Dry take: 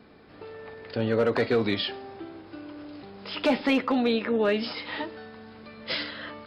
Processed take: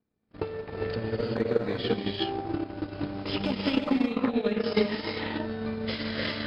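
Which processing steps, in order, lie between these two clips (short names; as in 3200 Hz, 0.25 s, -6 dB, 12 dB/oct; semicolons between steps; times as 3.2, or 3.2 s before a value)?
gate -47 dBFS, range -34 dB; low shelf 250 Hz +11.5 dB; compressor 2:1, threshold -31 dBFS, peak gain reduction 9 dB; limiter -26 dBFS, peak gain reduction 8.5 dB; non-linear reverb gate 0.42 s rising, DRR -3 dB; transient shaper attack +11 dB, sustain -11 dB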